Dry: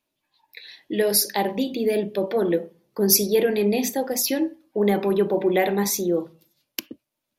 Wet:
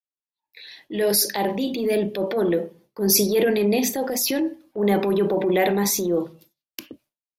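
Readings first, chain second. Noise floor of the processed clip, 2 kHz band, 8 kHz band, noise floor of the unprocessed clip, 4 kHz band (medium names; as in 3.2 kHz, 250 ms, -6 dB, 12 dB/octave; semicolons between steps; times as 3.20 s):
under -85 dBFS, +1.0 dB, +0.5 dB, -81 dBFS, +1.0 dB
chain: expander -50 dBFS; transient shaper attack -7 dB, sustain +4 dB; trim +1.5 dB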